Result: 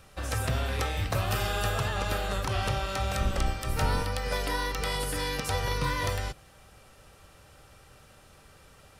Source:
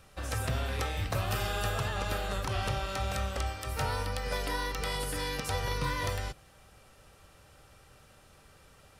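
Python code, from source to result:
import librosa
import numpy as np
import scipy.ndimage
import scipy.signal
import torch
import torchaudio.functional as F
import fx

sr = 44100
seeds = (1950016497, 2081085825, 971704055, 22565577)

y = fx.octave_divider(x, sr, octaves=1, level_db=2.0, at=(3.2, 4.03))
y = y * 10.0 ** (3.0 / 20.0)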